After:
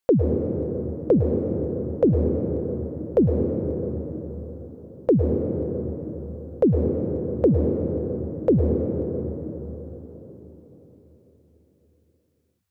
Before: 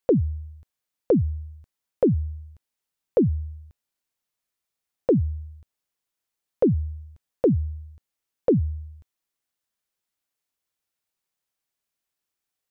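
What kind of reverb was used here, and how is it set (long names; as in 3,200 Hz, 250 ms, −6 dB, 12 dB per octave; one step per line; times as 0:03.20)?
dense smooth reverb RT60 4.6 s, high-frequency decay 0.35×, pre-delay 95 ms, DRR 1.5 dB
level +1 dB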